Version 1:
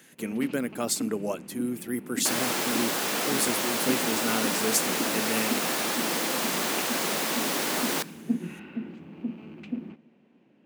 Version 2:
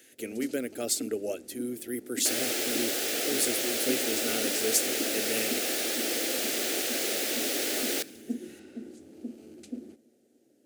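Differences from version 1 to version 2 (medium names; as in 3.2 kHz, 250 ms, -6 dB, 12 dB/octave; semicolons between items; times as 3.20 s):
first sound: remove resonant low-pass 2.6 kHz, resonance Q 4; master: add static phaser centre 420 Hz, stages 4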